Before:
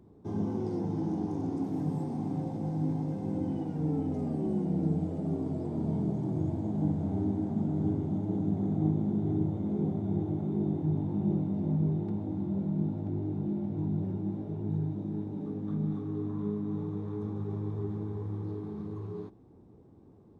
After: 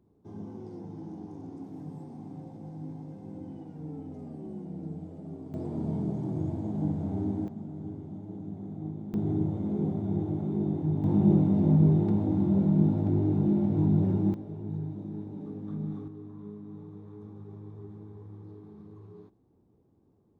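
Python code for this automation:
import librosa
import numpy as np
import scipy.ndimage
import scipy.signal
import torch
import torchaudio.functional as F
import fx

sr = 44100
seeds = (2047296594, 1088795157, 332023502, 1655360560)

y = fx.gain(x, sr, db=fx.steps((0.0, -9.5), (5.54, -0.5), (7.48, -9.5), (9.14, 1.0), (11.04, 7.5), (14.34, -3.0), (16.08, -10.0)))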